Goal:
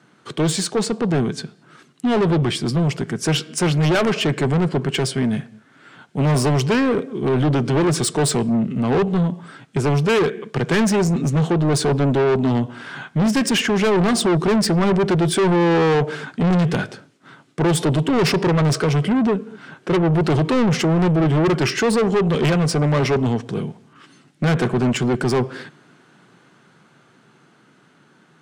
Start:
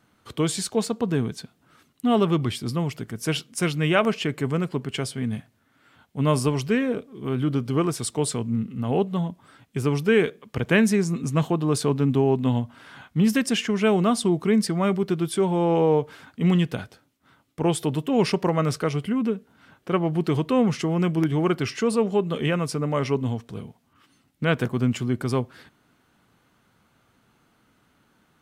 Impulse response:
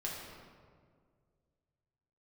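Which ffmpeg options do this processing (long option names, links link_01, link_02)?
-filter_complex "[0:a]highpass=frequency=130:width=0.5412,highpass=frequency=130:width=1.3066,equalizer=frequency=150:width_type=q:width=4:gain=6,equalizer=frequency=380:width_type=q:width=4:gain=6,equalizer=frequency=1600:width_type=q:width=4:gain=4,lowpass=frequency=9000:width=0.5412,lowpass=frequency=9000:width=1.3066,dynaudnorm=framelen=560:gausssize=9:maxgain=11.5dB,asplit=2[link_01][link_02];[1:a]atrim=start_sample=2205,afade=type=out:start_time=0.29:duration=0.01,atrim=end_sample=13230[link_03];[link_02][link_03]afir=irnorm=-1:irlink=0,volume=-21.5dB[link_04];[link_01][link_04]amix=inputs=2:normalize=0,asoftclip=type=tanh:threshold=-21.5dB,volume=7dB"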